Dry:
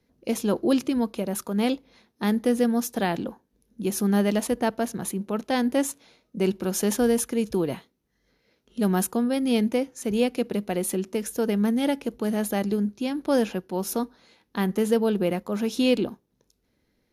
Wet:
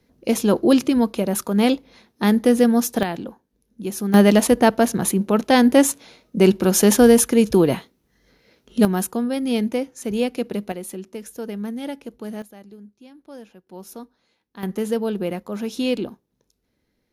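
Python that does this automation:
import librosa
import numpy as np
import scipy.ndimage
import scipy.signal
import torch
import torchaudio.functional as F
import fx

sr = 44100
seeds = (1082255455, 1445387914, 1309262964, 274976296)

y = fx.gain(x, sr, db=fx.steps((0.0, 6.5), (3.03, -1.0), (4.14, 9.5), (8.85, 1.0), (10.72, -6.0), (12.42, -18.0), (13.67, -10.5), (14.63, -1.0)))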